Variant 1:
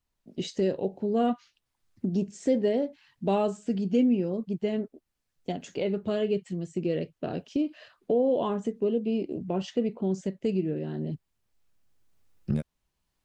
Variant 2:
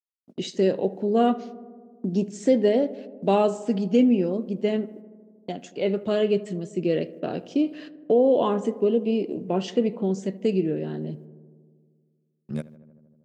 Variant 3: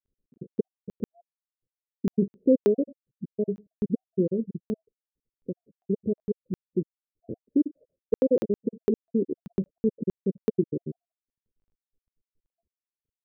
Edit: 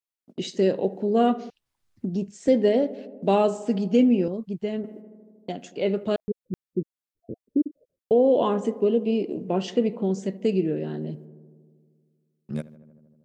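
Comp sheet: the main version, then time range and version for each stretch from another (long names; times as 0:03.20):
2
0:01.50–0:02.48: punch in from 1
0:04.28–0:04.84: punch in from 1
0:06.16–0:08.11: punch in from 3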